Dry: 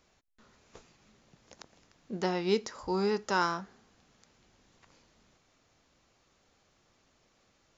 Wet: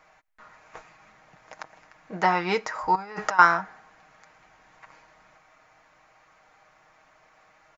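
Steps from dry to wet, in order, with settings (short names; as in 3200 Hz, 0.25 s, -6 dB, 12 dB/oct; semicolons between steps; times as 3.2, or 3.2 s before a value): 2.95–3.39 negative-ratio compressor -41 dBFS, ratio -1; band shelf 1200 Hz +14 dB 2.3 oct; comb 6.4 ms, depth 52%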